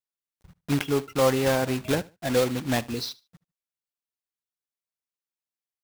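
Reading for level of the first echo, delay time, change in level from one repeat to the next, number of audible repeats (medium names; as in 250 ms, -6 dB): -22.0 dB, 74 ms, -12.5 dB, 2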